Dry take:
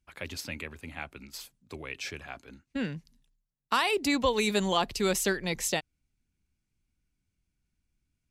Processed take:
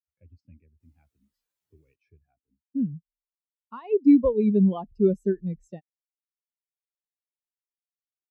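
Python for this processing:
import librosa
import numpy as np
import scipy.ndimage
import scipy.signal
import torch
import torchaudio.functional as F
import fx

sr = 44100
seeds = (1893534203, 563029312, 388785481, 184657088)

y = fx.low_shelf(x, sr, hz=420.0, db=10.5)
y = fx.quant_dither(y, sr, seeds[0], bits=6, dither='triangular', at=(0.8, 1.96))
y = fx.spectral_expand(y, sr, expansion=2.5)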